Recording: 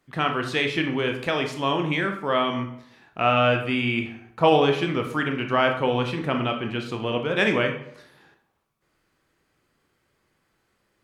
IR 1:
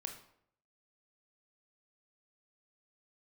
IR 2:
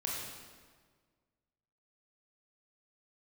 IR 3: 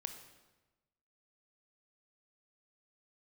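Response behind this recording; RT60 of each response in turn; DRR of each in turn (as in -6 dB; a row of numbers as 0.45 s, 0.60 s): 1; 0.70 s, 1.6 s, 1.1 s; 4.0 dB, -4.0 dB, 6.5 dB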